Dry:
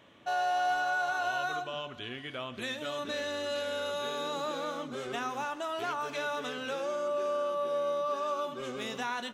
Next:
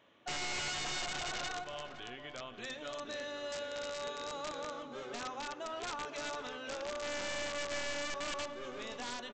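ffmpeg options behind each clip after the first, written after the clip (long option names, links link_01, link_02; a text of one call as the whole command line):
ffmpeg -i in.wav -filter_complex "[0:a]bass=frequency=250:gain=-6,treble=frequency=4000:gain=-2,aresample=16000,aeval=exprs='(mod(22.4*val(0)+1,2)-1)/22.4':channel_layout=same,aresample=44100,asplit=2[link_01][link_02];[link_02]adelay=513,lowpass=frequency=1400:poles=1,volume=-8.5dB,asplit=2[link_03][link_04];[link_04]adelay=513,lowpass=frequency=1400:poles=1,volume=0.49,asplit=2[link_05][link_06];[link_06]adelay=513,lowpass=frequency=1400:poles=1,volume=0.49,asplit=2[link_07][link_08];[link_08]adelay=513,lowpass=frequency=1400:poles=1,volume=0.49,asplit=2[link_09][link_10];[link_10]adelay=513,lowpass=frequency=1400:poles=1,volume=0.49,asplit=2[link_11][link_12];[link_12]adelay=513,lowpass=frequency=1400:poles=1,volume=0.49[link_13];[link_01][link_03][link_05][link_07][link_09][link_11][link_13]amix=inputs=7:normalize=0,volume=-6.5dB" out.wav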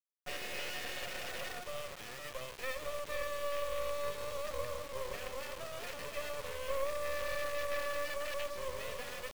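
ffmpeg -i in.wav -filter_complex "[0:a]asplit=3[link_01][link_02][link_03];[link_01]bandpass=frequency=530:width_type=q:width=8,volume=0dB[link_04];[link_02]bandpass=frequency=1840:width_type=q:width=8,volume=-6dB[link_05];[link_03]bandpass=frequency=2480:width_type=q:width=8,volume=-9dB[link_06];[link_04][link_05][link_06]amix=inputs=3:normalize=0,asubboost=boost=9:cutoff=79,acrusher=bits=7:dc=4:mix=0:aa=0.000001,volume=15.5dB" out.wav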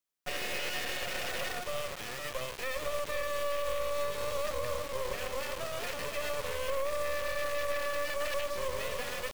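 ffmpeg -i in.wav -af "alimiter=level_in=5.5dB:limit=-24dB:level=0:latency=1:release=54,volume=-5.5dB,volume=6.5dB" out.wav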